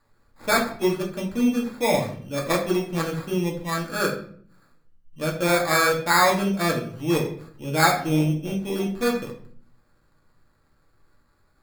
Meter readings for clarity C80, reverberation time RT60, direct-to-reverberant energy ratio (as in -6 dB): 12.5 dB, 0.55 s, -2.0 dB